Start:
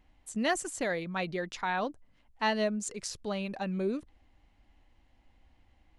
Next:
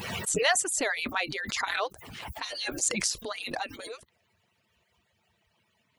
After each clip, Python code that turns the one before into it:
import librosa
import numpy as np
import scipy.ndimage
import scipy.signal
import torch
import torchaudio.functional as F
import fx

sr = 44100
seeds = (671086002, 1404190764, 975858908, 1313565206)

y = fx.hpss_only(x, sr, part='percussive')
y = fx.tilt_eq(y, sr, slope=2.0)
y = fx.pre_swell(y, sr, db_per_s=35.0)
y = F.gain(torch.from_numpy(y), 4.5).numpy()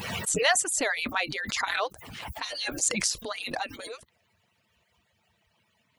y = fx.peak_eq(x, sr, hz=380.0, db=-5.0, octaves=0.26)
y = F.gain(torch.from_numpy(y), 1.5).numpy()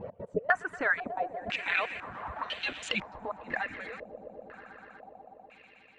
y = fx.step_gate(x, sr, bpm=154, pattern='x.xx.xxxxxx.x.x', floor_db=-24.0, edge_ms=4.5)
y = fx.echo_swell(y, sr, ms=122, loudest=5, wet_db=-18.0)
y = fx.filter_held_lowpass(y, sr, hz=2.0, low_hz=570.0, high_hz=3100.0)
y = F.gain(torch.from_numpy(y), -5.5).numpy()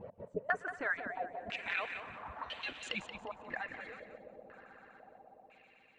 y = fx.echo_feedback(x, sr, ms=179, feedback_pct=29, wet_db=-9.5)
y = F.gain(torch.from_numpy(y), -7.5).numpy()